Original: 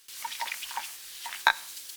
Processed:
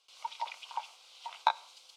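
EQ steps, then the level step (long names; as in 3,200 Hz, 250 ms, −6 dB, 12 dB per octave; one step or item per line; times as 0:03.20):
band-pass filter 340–2,900 Hz
phaser with its sweep stopped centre 730 Hz, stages 4
0.0 dB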